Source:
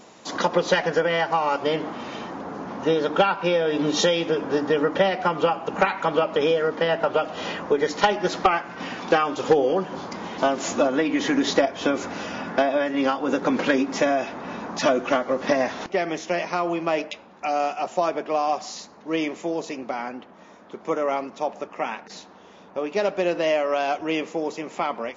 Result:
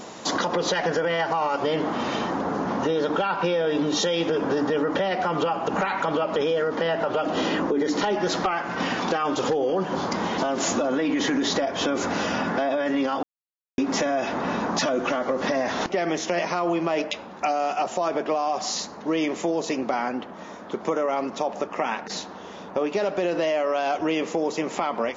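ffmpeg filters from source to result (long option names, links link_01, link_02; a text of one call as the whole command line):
ffmpeg -i in.wav -filter_complex "[0:a]asettb=1/sr,asplit=3[link_01][link_02][link_03];[link_01]atrim=end=7.254[link_04];[link_02]atrim=start=7.25:end=8.15,asetpts=PTS-STARTPTS,afade=type=in:duration=0.004:curve=qsin,afade=type=out:start_time=0.896:duration=0.004:curve=qsin,equalizer=frequency=300:width_type=o:width=0.77:gain=10.5[link_05];[link_03]atrim=start=8.146[link_06];[link_04][link_05]acrossfade=duration=0.004:curve1=hsin:curve2=qsin[link_07];[link_07][link_06]acrossfade=duration=0.004:curve1=qsin:curve2=hsin,asplit=3[link_08][link_09][link_10];[link_08]atrim=end=13.23,asetpts=PTS-STARTPTS,afade=type=out:start_time=13.226:duration=0.004:curve=hsin[link_11];[link_09]atrim=start=13.23:end=13.78,asetpts=PTS-STARTPTS,volume=0[link_12];[link_10]atrim=start=13.78,asetpts=PTS-STARTPTS,afade=type=in:duration=0.004:curve=hsin[link_13];[link_11][link_12][link_13]concat=n=3:v=0:a=1,equalizer=frequency=2400:width_type=o:width=0.4:gain=-3,alimiter=limit=-19.5dB:level=0:latency=1:release=35,acompressor=threshold=-32dB:ratio=2.5,volume=9dB" out.wav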